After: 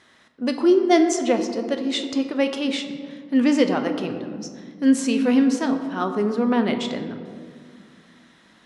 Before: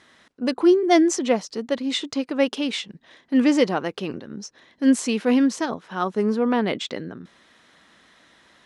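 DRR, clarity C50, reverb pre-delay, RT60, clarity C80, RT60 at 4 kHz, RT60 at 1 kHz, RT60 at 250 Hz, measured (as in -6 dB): 6.0 dB, 8.5 dB, 8 ms, 2.0 s, 9.5 dB, 1.0 s, 1.8 s, 3.1 s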